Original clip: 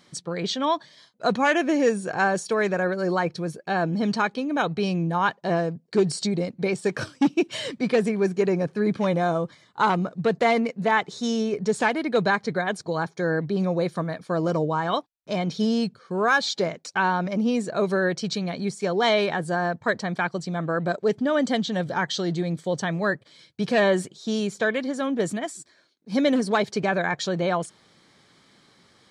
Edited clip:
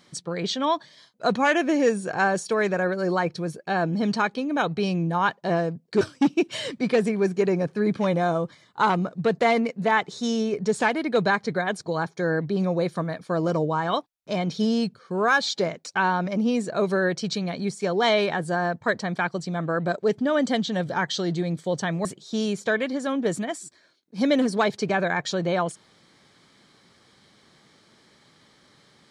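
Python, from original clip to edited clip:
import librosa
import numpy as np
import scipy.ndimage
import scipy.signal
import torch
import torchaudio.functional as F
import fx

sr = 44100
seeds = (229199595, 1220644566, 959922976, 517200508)

y = fx.edit(x, sr, fx.cut(start_s=6.01, length_s=1.0),
    fx.cut(start_s=23.05, length_s=0.94), tone=tone)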